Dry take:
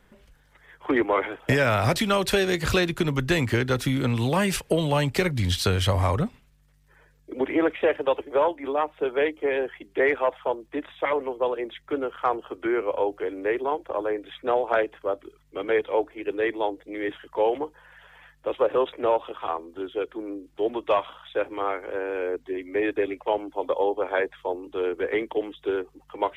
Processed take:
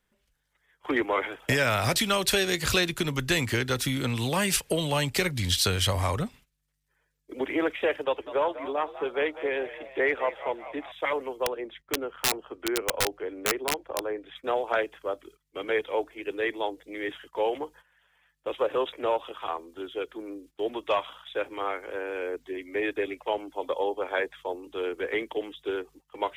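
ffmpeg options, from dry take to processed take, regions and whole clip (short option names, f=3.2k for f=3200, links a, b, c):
-filter_complex "[0:a]asettb=1/sr,asplit=3[a][b][c];[a]atrim=end=8.044[d];[b]atrim=start=8.04:end=10.92,asetpts=PTS-STARTPTS,afade=t=in:d=0.004:c=qsin,afade=t=out:st=2.876:d=0.004:c=qsin,lowpass=f=3.5k:p=1,asplit=7[e][f][g][h][i][j][k];[f]adelay=198,afreqshift=66,volume=-14dB[l];[g]adelay=396,afreqshift=132,volume=-19dB[m];[h]adelay=594,afreqshift=198,volume=-24.1dB[n];[i]adelay=792,afreqshift=264,volume=-29.1dB[o];[j]adelay=990,afreqshift=330,volume=-34.1dB[p];[k]adelay=1188,afreqshift=396,volume=-39.2dB[q];[e][l][m][n][o][p][q]amix=inputs=7:normalize=0,atrim=end_sample=127008[r];[c]atrim=start=10.916[s];[d][r]acrossfade=d=0.004:c1=hsin:c2=qsin[t];[t][s]acrossfade=d=0.004:c1=qsin:c2=hsin,asettb=1/sr,asplit=3[u][v][w];[u]atrim=end=11.464[x];[v]atrim=start=11.46:end=14.36,asetpts=PTS-STARTPTS,afade=t=in:d=0.004:c=qsin,afade=t=out:st=2.896:d=0.004:c=qsin,lowpass=f=1.6k:p=1,aeval=exprs='(mod(7.5*val(0)+1,2)-1)/7.5':c=same[y];[w]atrim=start=14.356[z];[x][y]acrossfade=d=0.004:c1=hsin:c2=qsin[aa];[aa][z]acrossfade=d=0.004:c1=qsin:c2=hsin,agate=range=-14dB:threshold=-46dB:ratio=16:detection=peak,highshelf=f=2.4k:g=11,volume=-5dB"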